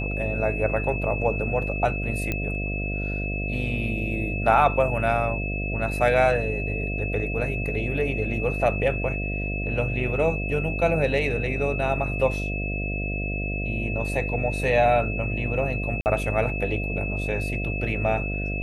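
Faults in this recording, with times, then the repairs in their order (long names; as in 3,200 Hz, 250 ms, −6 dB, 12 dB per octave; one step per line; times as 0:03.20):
mains buzz 50 Hz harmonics 14 −29 dBFS
whistle 2,600 Hz −31 dBFS
0:02.32: click −13 dBFS
0:16.01–0:16.06: drop-out 49 ms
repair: click removal
notch filter 2,600 Hz, Q 30
hum removal 50 Hz, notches 14
repair the gap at 0:16.01, 49 ms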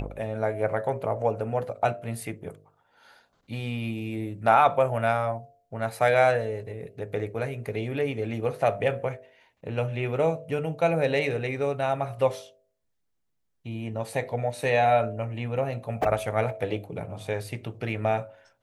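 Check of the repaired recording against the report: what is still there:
none of them is left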